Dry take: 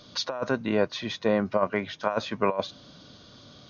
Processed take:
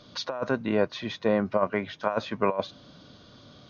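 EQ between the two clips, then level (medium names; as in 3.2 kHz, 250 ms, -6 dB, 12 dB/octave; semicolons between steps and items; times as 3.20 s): treble shelf 5.5 kHz -10.5 dB; 0.0 dB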